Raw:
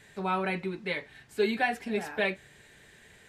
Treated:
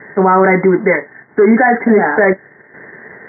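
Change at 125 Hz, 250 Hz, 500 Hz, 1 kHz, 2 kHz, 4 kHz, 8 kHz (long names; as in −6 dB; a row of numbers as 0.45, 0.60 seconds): +19.0 dB, +21.5 dB, +20.5 dB, +19.0 dB, +17.0 dB, below −35 dB, below −30 dB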